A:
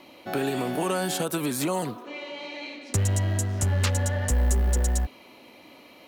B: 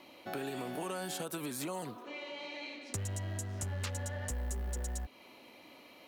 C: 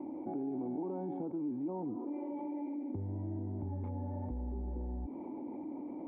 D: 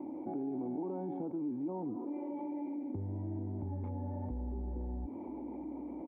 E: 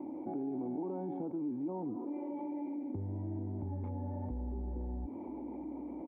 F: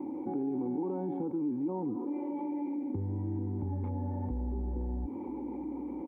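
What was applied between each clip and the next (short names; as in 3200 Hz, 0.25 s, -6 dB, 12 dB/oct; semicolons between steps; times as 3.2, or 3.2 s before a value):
low shelf 400 Hz -3 dB; compressor 2:1, threshold -35 dBFS, peak gain reduction 8 dB; gain -5 dB
vocal tract filter u; fast leveller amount 70%; gain +4.5 dB
echo 0.963 s -23.5 dB
nothing audible
Butterworth band-stop 650 Hz, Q 3.9; gain +4.5 dB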